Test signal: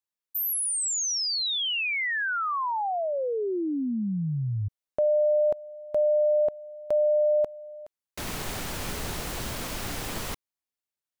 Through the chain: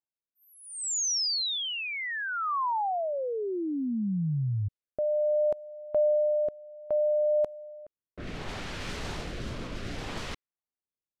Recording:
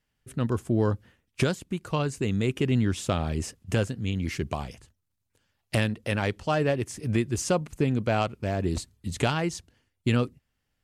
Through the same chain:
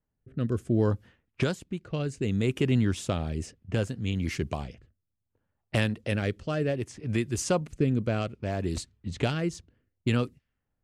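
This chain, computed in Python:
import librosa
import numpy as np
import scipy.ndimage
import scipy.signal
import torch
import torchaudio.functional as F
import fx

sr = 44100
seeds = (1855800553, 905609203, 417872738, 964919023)

y = fx.rotary(x, sr, hz=0.65)
y = fx.env_lowpass(y, sr, base_hz=1000.0, full_db=-26.0)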